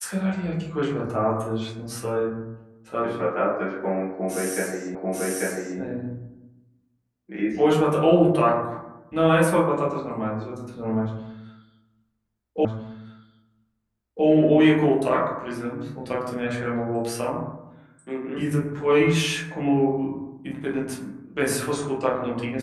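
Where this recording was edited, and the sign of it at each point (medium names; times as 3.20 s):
4.95 s: repeat of the last 0.84 s
12.65 s: repeat of the last 1.61 s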